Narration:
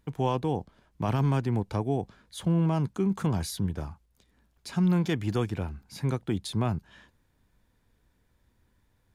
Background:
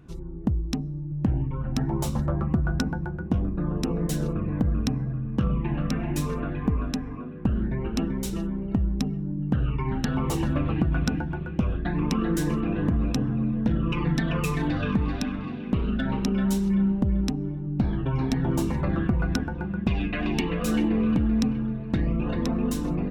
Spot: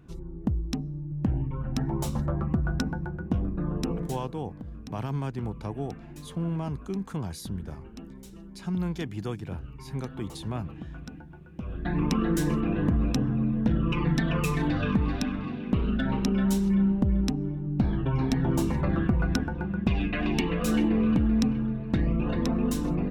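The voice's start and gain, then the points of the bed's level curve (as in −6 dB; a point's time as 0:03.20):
3.90 s, −5.5 dB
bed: 0:03.92 −2.5 dB
0:04.31 −16.5 dB
0:11.50 −16.5 dB
0:11.92 −0.5 dB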